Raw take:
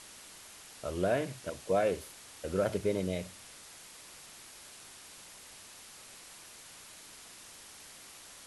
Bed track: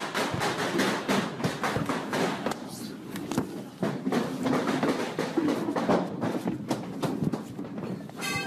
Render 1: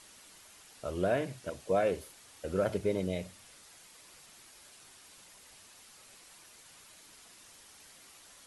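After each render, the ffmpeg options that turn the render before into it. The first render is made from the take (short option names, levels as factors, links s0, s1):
-af "afftdn=nr=6:nf=-52"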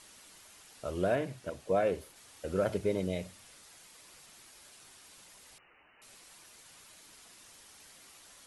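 -filter_complex "[0:a]asettb=1/sr,asplit=3[s0][s1][s2];[s0]atrim=end=1.154[s3];[s1]atrim=start=1.15:end=2.16,asetpts=PTS-STARTPTS,afade=t=in:d=0.004:c=qsin,afade=t=out:st=1.006:d=0.004:c=qsin,equalizer=f=8500:w=0.33:g=-4[s4];[s2]atrim=start=2.156[s5];[s3][s4]acrossfade=d=0.004:c1=hsin:c2=qsin[s6];[s6][s5]acrossfade=d=0.004:c1=qsin:c2=hsin,asettb=1/sr,asplit=3[s7][s8][s9];[s7]atrim=end=5.584[s10];[s8]atrim=start=5.58:end=6.02,asetpts=PTS-STARTPTS,afade=t=in:d=0.004:c=qsin,afade=t=out:st=0.436:d=0.004:c=qsin,lowpass=f=2600:t=q:w=0.5098,lowpass=f=2600:t=q:w=0.6013,lowpass=f=2600:t=q:w=0.9,lowpass=f=2600:t=q:w=2.563,afreqshift=-3000[s11];[s9]atrim=start=6.016[s12];[s10][s11]acrossfade=d=0.004:c1=hsin:c2=qsin[s13];[s13][s12]acrossfade=d=0.004:c1=qsin:c2=hsin"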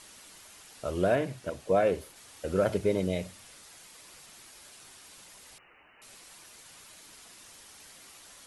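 -af "volume=1.58"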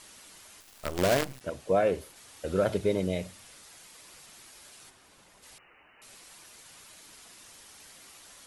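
-filter_complex "[0:a]asettb=1/sr,asplit=3[s0][s1][s2];[s0]atrim=end=0.604[s3];[s1]atrim=start=0.6:end=1.41,asetpts=PTS-STARTPTS,afade=t=in:d=0.004:c=qsin,afade=t=out:st=0.806:d=0.004:c=qsin,acrusher=bits=5:dc=4:mix=0:aa=0.000001[s4];[s2]atrim=start=1.406[s5];[s3][s4]acrossfade=d=0.004:c1=hsin:c2=qsin[s6];[s6][s5]acrossfade=d=0.004:c1=qsin:c2=hsin,asettb=1/sr,asplit=3[s7][s8][s9];[s7]atrim=end=2.464[s10];[s8]atrim=start=2.46:end=2.93,asetpts=PTS-STARTPTS,afade=t=in:d=0.004:c=qsin,afade=t=out:st=0.466:d=0.004:c=qsin,equalizer=f=3700:w=5.6:g=6[s11];[s9]atrim=start=2.926[s12];[s10][s11]acrossfade=d=0.004:c1=hsin:c2=qsin[s13];[s13][s12]acrossfade=d=0.004:c1=qsin:c2=hsin,asplit=3[s14][s15][s16];[s14]afade=t=out:st=4.89:d=0.02[s17];[s15]highshelf=f=2400:g=-10.5,afade=t=in:st=4.89:d=0.02,afade=t=out:st=5.42:d=0.02[s18];[s16]afade=t=in:st=5.42:d=0.02[s19];[s17][s18][s19]amix=inputs=3:normalize=0"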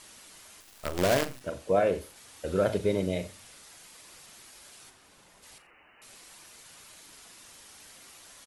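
-filter_complex "[0:a]asplit=2[s0][s1];[s1]adelay=40,volume=0.251[s2];[s0][s2]amix=inputs=2:normalize=0,aecho=1:1:86:0.106"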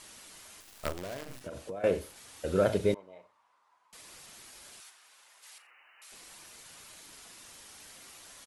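-filter_complex "[0:a]asettb=1/sr,asplit=3[s0][s1][s2];[s0]atrim=end=0.924[s3];[s1]atrim=start=0.92:end=1.84,asetpts=PTS-STARTPTS,afade=t=in:d=0.004:c=qsin,afade=t=out:st=0.916:d=0.004:c=qsin,acompressor=threshold=0.0158:ratio=10:attack=3.2:release=140:knee=1:detection=peak[s4];[s2]atrim=start=1.836[s5];[s3][s4]acrossfade=d=0.004:c1=hsin:c2=qsin[s6];[s6][s5]acrossfade=d=0.004:c1=qsin:c2=hsin,asettb=1/sr,asplit=3[s7][s8][s9];[s7]atrim=end=2.944[s10];[s8]atrim=start=2.94:end=3.93,asetpts=PTS-STARTPTS,afade=t=in:d=0.004:c=qsin,afade=t=out:st=0.986:d=0.004:c=qsin,bandpass=f=1000:t=q:w=7[s11];[s9]atrim=start=3.926[s12];[s10][s11]acrossfade=d=0.004:c1=hsin:c2=qsin[s13];[s13][s12]acrossfade=d=0.004:c1=qsin:c2=hsin,asettb=1/sr,asplit=3[s14][s15][s16];[s14]atrim=end=4.804[s17];[s15]atrim=start=4.8:end=6.12,asetpts=PTS-STARTPTS,afade=t=in:d=0.004:c=qsin,afade=t=out:st=1.316:d=0.004:c=qsin,highpass=980[s18];[s16]atrim=start=6.116[s19];[s17][s18]acrossfade=d=0.004:c1=hsin:c2=qsin[s20];[s20][s19]acrossfade=d=0.004:c1=qsin:c2=hsin"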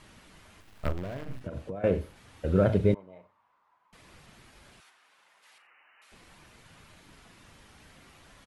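-af "bass=f=250:g=11,treble=f=4000:g=-14"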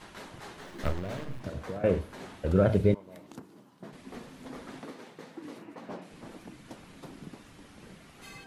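-filter_complex "[1:a]volume=0.133[s0];[0:a][s0]amix=inputs=2:normalize=0"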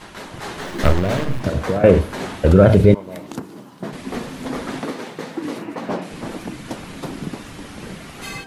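-af "dynaudnorm=f=280:g=3:m=2.24,alimiter=level_in=2.99:limit=0.891:release=50:level=0:latency=1"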